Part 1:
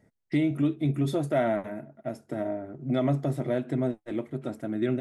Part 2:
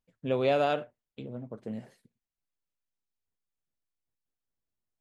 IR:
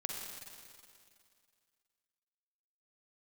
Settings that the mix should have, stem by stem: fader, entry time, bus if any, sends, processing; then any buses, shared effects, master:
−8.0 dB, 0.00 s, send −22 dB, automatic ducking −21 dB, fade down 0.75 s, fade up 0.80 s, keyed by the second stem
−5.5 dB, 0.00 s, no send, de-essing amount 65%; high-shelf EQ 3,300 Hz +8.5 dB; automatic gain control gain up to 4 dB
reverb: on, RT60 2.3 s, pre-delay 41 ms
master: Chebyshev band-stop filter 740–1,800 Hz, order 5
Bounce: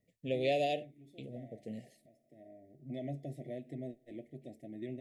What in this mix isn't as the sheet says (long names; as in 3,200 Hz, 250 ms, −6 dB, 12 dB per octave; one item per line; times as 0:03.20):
stem 1 −8.0 dB → −15.0 dB
stem 2: missing automatic gain control gain up to 4 dB